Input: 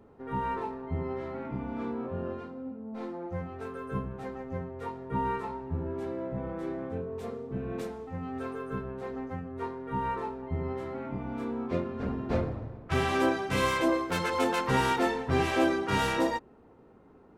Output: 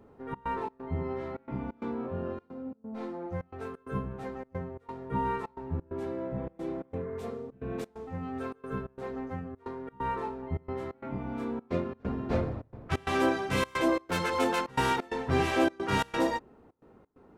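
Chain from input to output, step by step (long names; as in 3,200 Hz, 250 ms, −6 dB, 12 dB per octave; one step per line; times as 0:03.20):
healed spectral selection 0:06.40–0:07.18, 950–2,200 Hz both
gate pattern "xxx.xx.xx" 132 BPM −24 dB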